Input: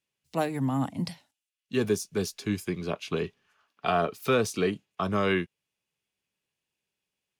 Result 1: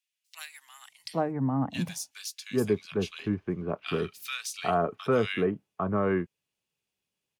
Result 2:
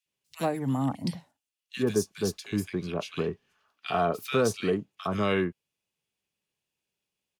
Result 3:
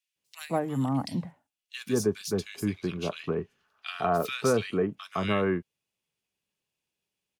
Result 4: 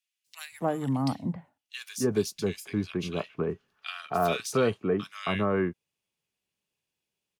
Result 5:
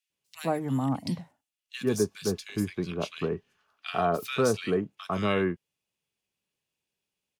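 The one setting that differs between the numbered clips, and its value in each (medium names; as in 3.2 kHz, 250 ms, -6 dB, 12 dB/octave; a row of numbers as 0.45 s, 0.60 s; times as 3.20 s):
bands offset in time, time: 800 ms, 60 ms, 160 ms, 270 ms, 100 ms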